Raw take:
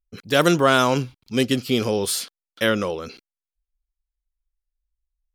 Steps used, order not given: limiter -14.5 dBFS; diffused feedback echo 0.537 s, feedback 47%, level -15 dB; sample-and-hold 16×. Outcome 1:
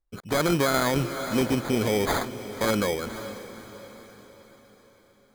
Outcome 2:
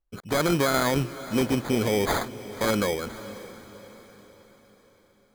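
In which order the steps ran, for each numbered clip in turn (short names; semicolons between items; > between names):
sample-and-hold > diffused feedback echo > limiter; sample-and-hold > limiter > diffused feedback echo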